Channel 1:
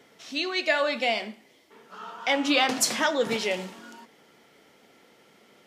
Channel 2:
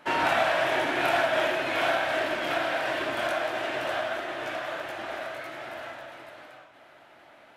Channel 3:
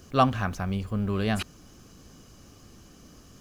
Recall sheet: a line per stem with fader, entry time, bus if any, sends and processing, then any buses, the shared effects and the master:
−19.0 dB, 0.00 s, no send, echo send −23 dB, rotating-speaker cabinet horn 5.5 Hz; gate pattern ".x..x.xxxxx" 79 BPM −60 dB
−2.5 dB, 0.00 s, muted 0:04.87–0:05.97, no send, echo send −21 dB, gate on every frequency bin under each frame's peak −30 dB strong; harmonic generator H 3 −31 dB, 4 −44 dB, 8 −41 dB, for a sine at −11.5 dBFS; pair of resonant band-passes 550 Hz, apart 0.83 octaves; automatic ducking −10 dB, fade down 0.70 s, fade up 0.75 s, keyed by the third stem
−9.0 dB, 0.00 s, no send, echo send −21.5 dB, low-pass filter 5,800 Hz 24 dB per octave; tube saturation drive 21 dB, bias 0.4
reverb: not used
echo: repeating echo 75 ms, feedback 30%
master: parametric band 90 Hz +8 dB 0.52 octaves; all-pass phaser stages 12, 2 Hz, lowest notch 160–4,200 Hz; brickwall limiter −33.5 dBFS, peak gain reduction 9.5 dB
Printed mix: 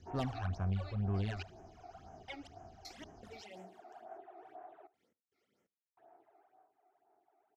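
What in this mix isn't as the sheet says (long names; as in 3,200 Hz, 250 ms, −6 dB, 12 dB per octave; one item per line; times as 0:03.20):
stem 2 −2.5 dB → −9.5 dB
master: missing brickwall limiter −33.5 dBFS, peak gain reduction 9.5 dB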